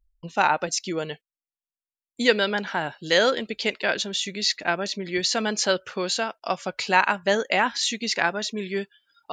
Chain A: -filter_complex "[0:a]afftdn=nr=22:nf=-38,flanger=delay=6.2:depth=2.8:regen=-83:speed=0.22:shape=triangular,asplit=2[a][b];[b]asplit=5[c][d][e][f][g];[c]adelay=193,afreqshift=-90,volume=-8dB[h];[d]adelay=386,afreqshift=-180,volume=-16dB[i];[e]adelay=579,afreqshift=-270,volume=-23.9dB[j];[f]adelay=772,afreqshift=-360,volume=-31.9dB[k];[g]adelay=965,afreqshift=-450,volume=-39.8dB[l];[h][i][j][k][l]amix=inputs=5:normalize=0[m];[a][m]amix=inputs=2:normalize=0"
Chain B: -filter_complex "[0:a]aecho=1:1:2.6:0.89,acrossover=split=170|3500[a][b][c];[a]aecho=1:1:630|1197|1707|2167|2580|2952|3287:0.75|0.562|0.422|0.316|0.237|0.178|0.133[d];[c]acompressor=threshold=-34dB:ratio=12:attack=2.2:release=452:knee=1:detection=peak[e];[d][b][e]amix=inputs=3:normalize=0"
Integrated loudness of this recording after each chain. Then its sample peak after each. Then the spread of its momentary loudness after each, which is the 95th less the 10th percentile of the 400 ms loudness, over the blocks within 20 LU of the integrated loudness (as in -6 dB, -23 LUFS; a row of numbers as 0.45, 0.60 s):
-28.0, -23.0 LUFS; -8.0, -2.5 dBFS; 9, 8 LU